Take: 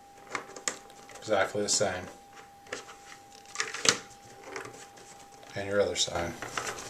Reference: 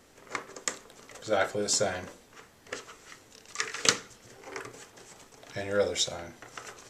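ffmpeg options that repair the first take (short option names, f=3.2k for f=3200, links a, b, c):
-af "bandreject=f=800:w=30,asetnsamples=n=441:p=0,asendcmd='6.15 volume volume -9dB',volume=0dB"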